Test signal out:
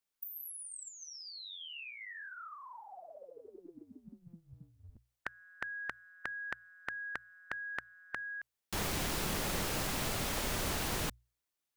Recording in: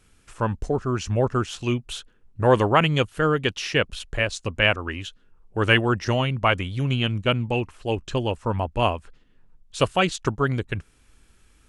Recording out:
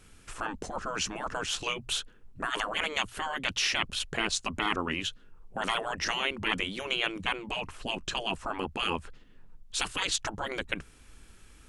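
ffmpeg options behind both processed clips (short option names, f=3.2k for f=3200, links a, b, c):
-af "afftfilt=real='re*lt(hypot(re,im),0.141)':imag='im*lt(hypot(re,im),0.141)':win_size=1024:overlap=0.75,bandreject=f=60:t=h:w=6,bandreject=f=120:t=h:w=6,volume=3.5dB"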